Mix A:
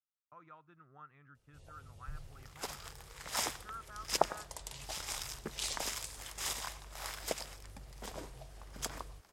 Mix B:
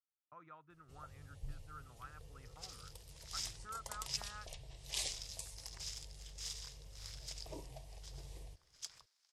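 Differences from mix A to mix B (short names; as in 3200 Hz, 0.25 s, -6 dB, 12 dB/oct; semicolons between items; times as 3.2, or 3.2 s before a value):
first sound: entry -0.65 s; second sound: add band-pass 5100 Hz, Q 1.9; reverb: off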